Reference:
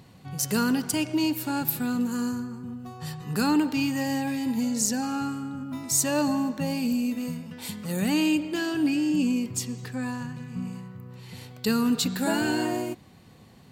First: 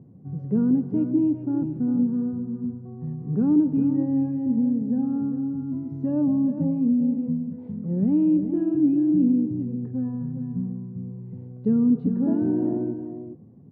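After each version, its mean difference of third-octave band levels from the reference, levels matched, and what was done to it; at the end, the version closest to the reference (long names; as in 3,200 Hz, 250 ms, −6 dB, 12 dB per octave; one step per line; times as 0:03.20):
13.5 dB: flat-topped band-pass 200 Hz, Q 0.68
high-frequency loss of the air 230 metres
single-tap delay 403 ms −9.5 dB
level +5 dB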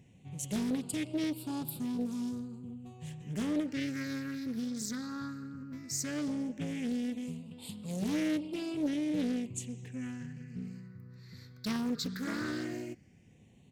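4.0 dB: downsampling to 32,000 Hz
all-pass phaser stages 6, 0.15 Hz, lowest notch 770–1,800 Hz
highs frequency-modulated by the lows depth 0.5 ms
level −8 dB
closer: second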